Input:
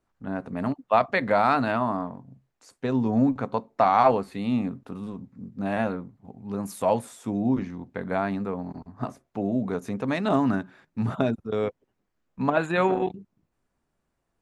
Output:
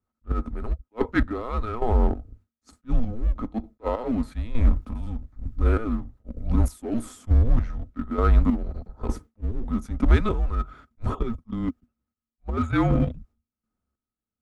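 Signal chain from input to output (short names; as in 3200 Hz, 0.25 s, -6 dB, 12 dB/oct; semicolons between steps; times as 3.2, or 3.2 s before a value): gate with hold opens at -46 dBFS; bell 93 Hz -10 dB 0.72 oct; reverse; compressor 10:1, threshold -31 dBFS, peak gain reduction 17.5 dB; reverse; small resonant body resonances 300/470/1500 Hz, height 17 dB, ringing for 65 ms; in parallel at -8 dB: overloaded stage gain 30 dB; on the sum: frequency shift -230 Hz; chopper 1.1 Hz, depth 65%, duty 35%; attack slew limiter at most 530 dB/s; gain +7 dB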